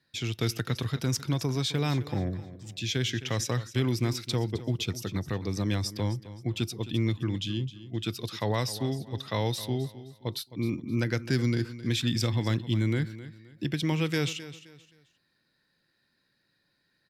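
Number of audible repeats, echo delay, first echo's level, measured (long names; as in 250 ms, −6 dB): 2, 262 ms, −15.0 dB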